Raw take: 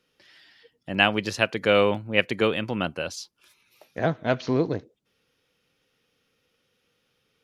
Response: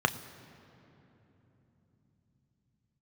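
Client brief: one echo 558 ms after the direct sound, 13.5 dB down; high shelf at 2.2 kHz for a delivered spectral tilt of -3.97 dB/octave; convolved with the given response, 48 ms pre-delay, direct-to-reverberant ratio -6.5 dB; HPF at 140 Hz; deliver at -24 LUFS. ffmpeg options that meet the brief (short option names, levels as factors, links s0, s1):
-filter_complex "[0:a]highpass=140,highshelf=f=2200:g=-8,aecho=1:1:558:0.211,asplit=2[s0][s1];[1:a]atrim=start_sample=2205,adelay=48[s2];[s1][s2]afir=irnorm=-1:irlink=0,volume=0.562[s3];[s0][s3]amix=inputs=2:normalize=0,volume=0.631"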